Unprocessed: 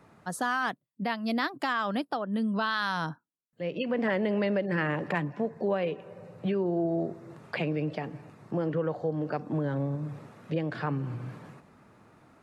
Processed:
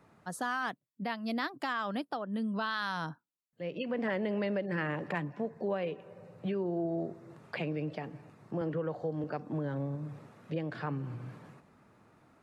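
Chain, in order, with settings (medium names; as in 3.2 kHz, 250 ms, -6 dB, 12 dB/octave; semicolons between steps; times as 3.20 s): 8.61–9.24 s: three bands compressed up and down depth 40%; trim -5 dB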